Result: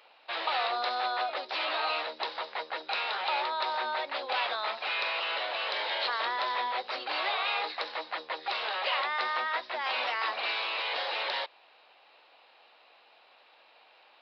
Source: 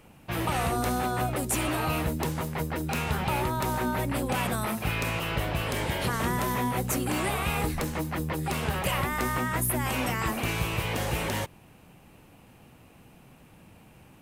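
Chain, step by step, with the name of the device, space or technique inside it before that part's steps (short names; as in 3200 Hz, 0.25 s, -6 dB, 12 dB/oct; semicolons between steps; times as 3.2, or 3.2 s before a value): musical greeting card (downsampling 11025 Hz; HPF 570 Hz 24 dB/oct; bell 3900 Hz +10 dB 0.38 oct)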